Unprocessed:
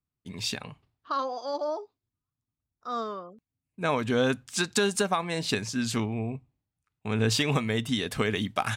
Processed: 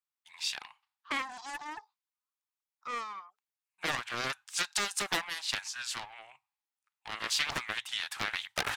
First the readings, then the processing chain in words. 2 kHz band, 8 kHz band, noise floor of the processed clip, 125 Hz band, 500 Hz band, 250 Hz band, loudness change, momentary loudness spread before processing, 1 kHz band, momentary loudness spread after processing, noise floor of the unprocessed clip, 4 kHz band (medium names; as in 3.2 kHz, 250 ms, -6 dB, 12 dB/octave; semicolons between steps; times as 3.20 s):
-1.5 dB, -2.5 dB, under -85 dBFS, -21.0 dB, -16.5 dB, -19.5 dB, -5.5 dB, 12 LU, -6.0 dB, 15 LU, under -85 dBFS, -1.5 dB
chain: elliptic high-pass 830 Hz, stop band 40 dB; loudspeaker Doppler distortion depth 0.87 ms; trim -1.5 dB